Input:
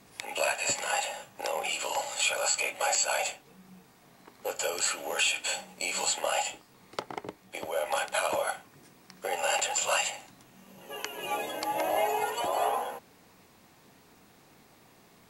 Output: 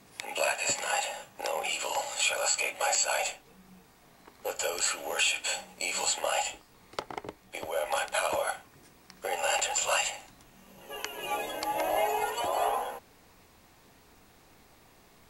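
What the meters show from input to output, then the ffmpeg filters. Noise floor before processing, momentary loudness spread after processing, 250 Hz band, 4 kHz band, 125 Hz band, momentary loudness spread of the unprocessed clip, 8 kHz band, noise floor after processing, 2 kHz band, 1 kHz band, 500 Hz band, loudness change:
−59 dBFS, 14 LU, −1.5 dB, 0.0 dB, −0.5 dB, 14 LU, 0.0 dB, −59 dBFS, 0.0 dB, 0.0 dB, −0.5 dB, 0.0 dB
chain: -af "asubboost=boost=4.5:cutoff=69"

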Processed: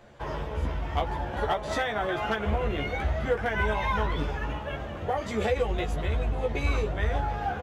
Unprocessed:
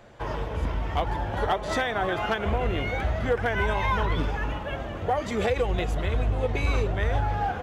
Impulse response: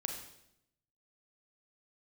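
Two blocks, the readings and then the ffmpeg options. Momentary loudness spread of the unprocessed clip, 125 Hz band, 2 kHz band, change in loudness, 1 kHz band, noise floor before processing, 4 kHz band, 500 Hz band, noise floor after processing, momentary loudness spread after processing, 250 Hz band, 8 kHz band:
5 LU, −2.5 dB, −2.0 dB, −2.0 dB, −2.0 dB, −34 dBFS, −2.0 dB, −1.5 dB, −36 dBFS, 6 LU, −2.0 dB, can't be measured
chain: -filter_complex "[0:a]asplit=2[link_01][link_02];[link_02]adelay=14,volume=-4dB[link_03];[link_01][link_03]amix=inputs=2:normalize=0,volume=-3.5dB"

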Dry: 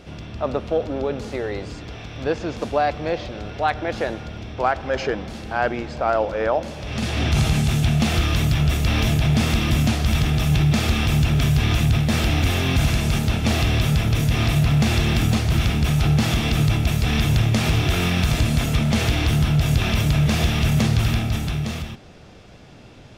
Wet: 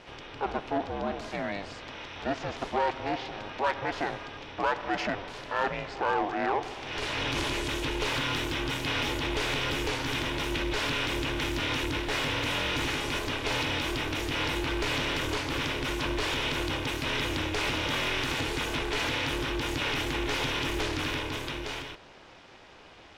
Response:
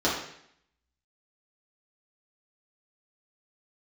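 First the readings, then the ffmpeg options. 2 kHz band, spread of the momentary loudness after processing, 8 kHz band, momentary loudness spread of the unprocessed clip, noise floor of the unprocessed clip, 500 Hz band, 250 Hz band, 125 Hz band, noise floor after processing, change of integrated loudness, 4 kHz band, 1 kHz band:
−3.0 dB, 6 LU, −8.5 dB, 9 LU, −43 dBFS, −7.0 dB, −11.5 dB, −19.5 dB, −51 dBFS, −9.5 dB, −3.5 dB, −4.5 dB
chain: -filter_complex "[0:a]asplit=2[link_01][link_02];[link_02]highpass=frequency=720:poles=1,volume=16dB,asoftclip=type=tanh:threshold=-8dB[link_03];[link_01][link_03]amix=inputs=2:normalize=0,lowpass=frequency=2000:poles=1,volume=-6dB,aeval=exprs='val(0)*sin(2*PI*200*n/s)':channel_layout=same,tiltshelf=frequency=870:gain=-3,volume=-7dB"

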